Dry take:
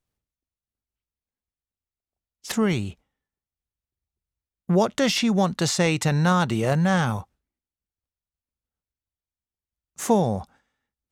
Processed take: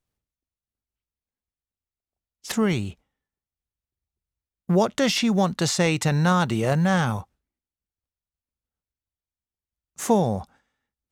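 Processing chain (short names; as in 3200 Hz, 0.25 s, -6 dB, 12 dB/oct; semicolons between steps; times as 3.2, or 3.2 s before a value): short-mantissa float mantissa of 6-bit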